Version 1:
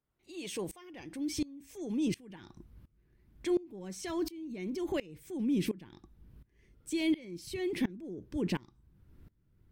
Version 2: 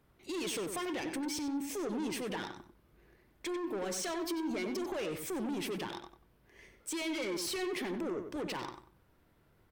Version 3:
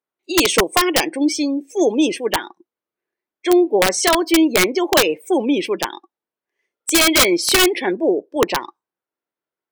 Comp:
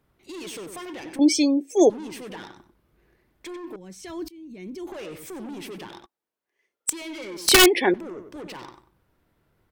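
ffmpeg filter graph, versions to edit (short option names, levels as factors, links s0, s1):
-filter_complex "[2:a]asplit=3[s0][s1][s2];[1:a]asplit=5[s3][s4][s5][s6][s7];[s3]atrim=end=1.192[s8];[s0]atrim=start=1.188:end=1.902[s9];[s4]atrim=start=1.898:end=3.762[s10];[0:a]atrim=start=3.758:end=4.872[s11];[s5]atrim=start=4.868:end=6.062[s12];[s1]atrim=start=6.058:end=6.902[s13];[s6]atrim=start=6.898:end=7.482[s14];[s2]atrim=start=7.478:end=7.942[s15];[s7]atrim=start=7.938[s16];[s8][s9]acrossfade=d=0.004:c1=hsin:c2=hsin[s17];[s17][s10]acrossfade=d=0.004:c1=hsin:c2=hsin[s18];[s18][s11]acrossfade=d=0.004:c1=hsin:c2=hsin[s19];[s19][s12]acrossfade=d=0.004:c1=hsin:c2=hsin[s20];[s20][s13]acrossfade=d=0.004:c1=hsin:c2=hsin[s21];[s21][s14]acrossfade=d=0.004:c1=hsin:c2=hsin[s22];[s22][s15]acrossfade=d=0.004:c1=hsin:c2=hsin[s23];[s23][s16]acrossfade=d=0.004:c1=hsin:c2=hsin"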